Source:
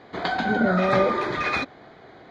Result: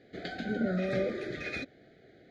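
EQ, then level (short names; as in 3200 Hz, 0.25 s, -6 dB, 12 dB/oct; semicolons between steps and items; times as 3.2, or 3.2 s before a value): Butterworth band-stop 1000 Hz, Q 0.94; bell 3300 Hz -3.5 dB 1.6 oct; -8.0 dB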